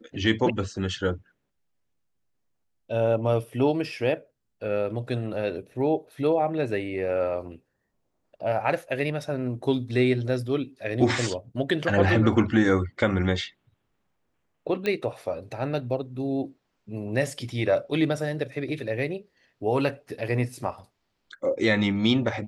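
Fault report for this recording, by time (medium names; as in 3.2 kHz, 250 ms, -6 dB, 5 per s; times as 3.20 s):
14.86 s: pop -15 dBFS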